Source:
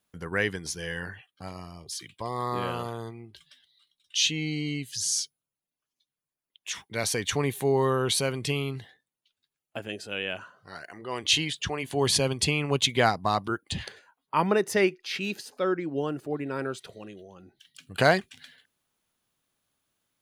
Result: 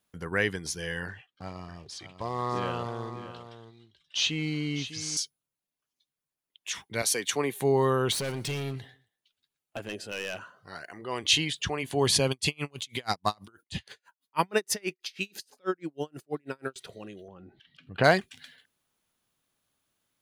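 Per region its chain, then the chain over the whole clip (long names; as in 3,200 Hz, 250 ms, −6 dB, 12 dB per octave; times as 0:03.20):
0:01.08–0:05.17: floating-point word with a short mantissa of 2 bits + high-frequency loss of the air 96 metres + single-tap delay 601 ms −12 dB
0:07.02–0:07.60: high-pass filter 260 Hz + high-shelf EQ 8,500 Hz +5.5 dB + multiband upward and downward expander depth 70%
0:08.12–0:10.39: gain into a clipping stage and back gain 29 dB + repeating echo 122 ms, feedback 28%, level −21 dB
0:12.31–0:16.76: high-shelf EQ 2,400 Hz +11 dB + tremolo with a sine in dB 6.2 Hz, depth 39 dB
0:17.28–0:18.04: upward compression, threshold −42 dBFS + high-frequency loss of the air 350 metres
whole clip: no processing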